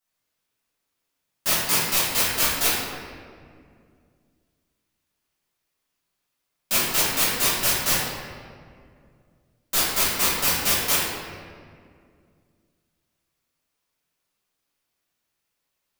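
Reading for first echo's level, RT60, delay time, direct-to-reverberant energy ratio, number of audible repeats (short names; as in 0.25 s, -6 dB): none, 2.2 s, none, -11.0 dB, none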